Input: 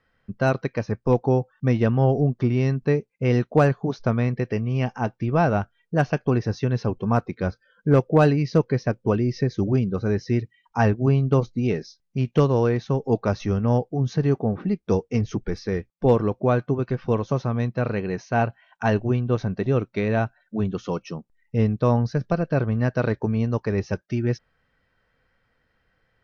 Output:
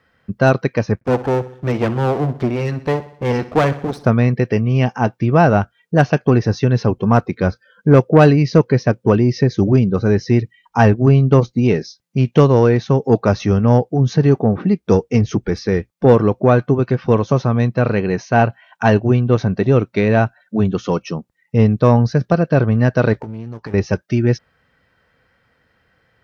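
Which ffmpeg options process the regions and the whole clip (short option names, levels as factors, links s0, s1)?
-filter_complex "[0:a]asettb=1/sr,asplit=3[s0][s1][s2];[s0]atrim=end=0.954[s3];[s1]atrim=start=0.95:end=4.06,asetpts=PTS-STARTPTS,afade=t=in:d=0.004:c=qsin,afade=t=out:st=3.106:d=0.004:c=qsin,aeval=exprs='max(val(0),0)':c=same,aecho=1:1:63|126|189|252|315:0.158|0.0824|0.0429|0.0223|0.0116,atrim=end_sample=137151[s4];[s2]atrim=start=4.056[s5];[s3][s4]acrossfade=d=0.004:c1=hsin:c2=qsin[s6];[s6][s5]acrossfade=d=0.004:c1=qsin:c2=hsin,asettb=1/sr,asplit=3[s7][s8][s9];[s7]atrim=end=23.134[s10];[s8]atrim=start=23.13:end=23.74,asetpts=PTS-STARTPTS,afade=t=in:d=0.004:c=qsin,afade=t=out:st=0.606:d=0.004:c=qsin,aeval=exprs='clip(val(0),-1,0.0316)':c=same,acompressor=threshold=0.0224:ratio=20:attack=3.2:release=140:knee=1:detection=peak,asplit=2[s11][s12];[s12]adelay=18,volume=0.251[s13];[s11][s13]amix=inputs=2:normalize=0,atrim=end_sample=26901[s14];[s9]atrim=start=23.736[s15];[s10][s14]acrossfade=d=0.004:c1=hsin:c2=qsin[s16];[s16][s15]acrossfade=d=0.004:c1=qsin:c2=hsin,highpass=63,acontrast=74,volume=1.26"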